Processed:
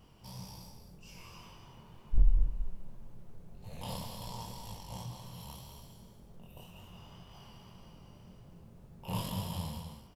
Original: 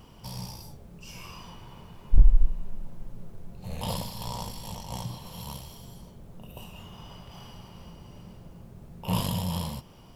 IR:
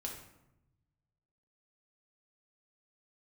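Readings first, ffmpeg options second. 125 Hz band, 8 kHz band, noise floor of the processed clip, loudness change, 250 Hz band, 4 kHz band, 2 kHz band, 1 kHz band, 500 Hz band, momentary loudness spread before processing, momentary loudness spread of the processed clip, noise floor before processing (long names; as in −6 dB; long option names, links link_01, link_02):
−7.5 dB, −7.5 dB, −56 dBFS, −7.5 dB, −8.5 dB, −7.5 dB, −7.5 dB, −7.0 dB, −7.5 dB, 19 LU, 19 LU, −50 dBFS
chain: -af "flanger=delay=19:depth=7.8:speed=1.9,aecho=1:1:192.4|265.3:0.398|0.251,volume=-5.5dB"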